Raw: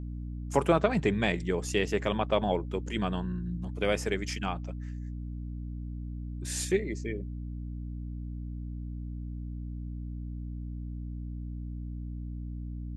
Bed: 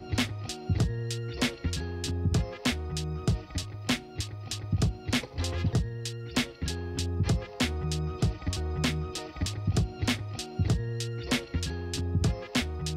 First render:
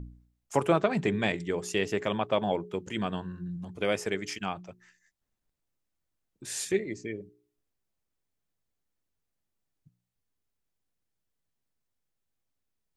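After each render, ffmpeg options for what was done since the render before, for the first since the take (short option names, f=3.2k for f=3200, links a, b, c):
-af "bandreject=f=60:t=h:w=4,bandreject=f=120:t=h:w=4,bandreject=f=180:t=h:w=4,bandreject=f=240:t=h:w=4,bandreject=f=300:t=h:w=4,bandreject=f=360:t=h:w=4,bandreject=f=420:t=h:w=4"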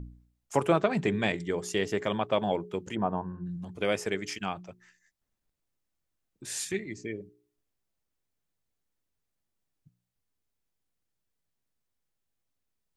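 -filter_complex "[0:a]asettb=1/sr,asplit=3[a][b][c];[a]atrim=end=1.344[d];[b]atrim=start=1.34:end=2.22,asetpts=PTS-STARTPTS,afade=t=in:d=0.004:c=qsin,afade=t=out:st=0.876:d=0.004:c=qsin,bandreject=f=2.6k:w=12[e];[c]atrim=start=2.216[f];[d][e]acrossfade=d=0.004:c1=hsin:c2=qsin[g];[g][f]acrossfade=d=0.004:c1=qsin:c2=hsin,asplit=3[h][i][j];[h]afade=t=out:st=2.94:d=0.02[k];[i]lowpass=f=890:t=q:w=2.7,afade=t=in:st=2.94:d=0.02,afade=t=out:st=3.45:d=0.02[l];[j]afade=t=in:st=3.45:d=0.02[m];[k][l][m]amix=inputs=3:normalize=0,asettb=1/sr,asplit=3[n][o][p];[n]atrim=end=6.584[q];[o]atrim=start=6.58:end=6.98,asetpts=PTS-STARTPTS,afade=t=in:d=0.004:c=qsin,afade=t=out:st=0.396:d=0.004:c=qsin,equalizer=f=510:t=o:w=0.86:g=-12[r];[p]atrim=start=6.976[s];[q][r]acrossfade=d=0.004:c1=hsin:c2=qsin[t];[t][s]acrossfade=d=0.004:c1=qsin:c2=hsin"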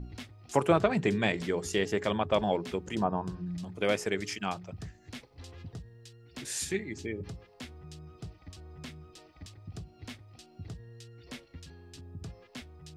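-filter_complex "[1:a]volume=-16.5dB[a];[0:a][a]amix=inputs=2:normalize=0"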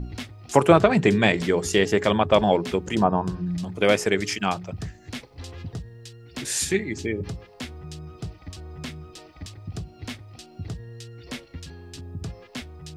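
-af "volume=9dB,alimiter=limit=-2dB:level=0:latency=1"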